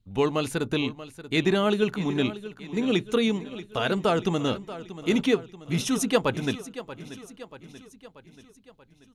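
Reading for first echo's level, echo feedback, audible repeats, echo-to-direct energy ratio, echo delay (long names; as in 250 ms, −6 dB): −14.5 dB, 54%, 4, −13.0 dB, 634 ms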